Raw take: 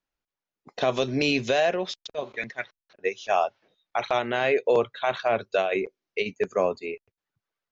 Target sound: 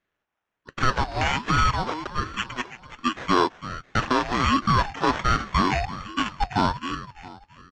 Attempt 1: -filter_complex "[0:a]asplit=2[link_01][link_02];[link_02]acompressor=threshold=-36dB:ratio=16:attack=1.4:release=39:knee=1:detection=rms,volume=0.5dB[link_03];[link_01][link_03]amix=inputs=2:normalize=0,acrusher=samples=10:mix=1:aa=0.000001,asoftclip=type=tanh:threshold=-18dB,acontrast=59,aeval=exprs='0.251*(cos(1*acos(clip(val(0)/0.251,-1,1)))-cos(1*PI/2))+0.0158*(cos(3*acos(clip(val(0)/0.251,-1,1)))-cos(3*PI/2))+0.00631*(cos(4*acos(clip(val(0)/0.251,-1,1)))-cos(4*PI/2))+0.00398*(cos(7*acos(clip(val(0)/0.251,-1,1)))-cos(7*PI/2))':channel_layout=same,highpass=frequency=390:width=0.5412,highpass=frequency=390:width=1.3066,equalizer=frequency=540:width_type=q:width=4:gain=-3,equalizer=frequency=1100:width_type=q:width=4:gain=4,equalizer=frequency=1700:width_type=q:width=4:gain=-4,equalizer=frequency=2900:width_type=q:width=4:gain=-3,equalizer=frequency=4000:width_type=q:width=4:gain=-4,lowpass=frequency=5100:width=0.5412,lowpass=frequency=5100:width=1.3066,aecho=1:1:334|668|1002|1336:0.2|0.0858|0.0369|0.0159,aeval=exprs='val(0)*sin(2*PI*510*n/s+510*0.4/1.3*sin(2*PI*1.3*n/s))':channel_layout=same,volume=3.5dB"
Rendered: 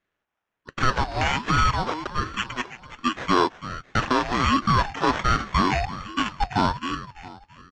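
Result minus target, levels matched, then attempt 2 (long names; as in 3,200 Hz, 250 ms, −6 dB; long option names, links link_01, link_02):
downward compressor: peak gain reduction −7 dB
-filter_complex "[0:a]asplit=2[link_01][link_02];[link_02]acompressor=threshold=-43.5dB:ratio=16:attack=1.4:release=39:knee=1:detection=rms,volume=0.5dB[link_03];[link_01][link_03]amix=inputs=2:normalize=0,acrusher=samples=10:mix=1:aa=0.000001,asoftclip=type=tanh:threshold=-18dB,acontrast=59,aeval=exprs='0.251*(cos(1*acos(clip(val(0)/0.251,-1,1)))-cos(1*PI/2))+0.0158*(cos(3*acos(clip(val(0)/0.251,-1,1)))-cos(3*PI/2))+0.00631*(cos(4*acos(clip(val(0)/0.251,-1,1)))-cos(4*PI/2))+0.00398*(cos(7*acos(clip(val(0)/0.251,-1,1)))-cos(7*PI/2))':channel_layout=same,highpass=frequency=390:width=0.5412,highpass=frequency=390:width=1.3066,equalizer=frequency=540:width_type=q:width=4:gain=-3,equalizer=frequency=1100:width_type=q:width=4:gain=4,equalizer=frequency=1700:width_type=q:width=4:gain=-4,equalizer=frequency=2900:width_type=q:width=4:gain=-3,equalizer=frequency=4000:width_type=q:width=4:gain=-4,lowpass=frequency=5100:width=0.5412,lowpass=frequency=5100:width=1.3066,aecho=1:1:334|668|1002|1336:0.2|0.0858|0.0369|0.0159,aeval=exprs='val(0)*sin(2*PI*510*n/s+510*0.4/1.3*sin(2*PI*1.3*n/s))':channel_layout=same,volume=3.5dB"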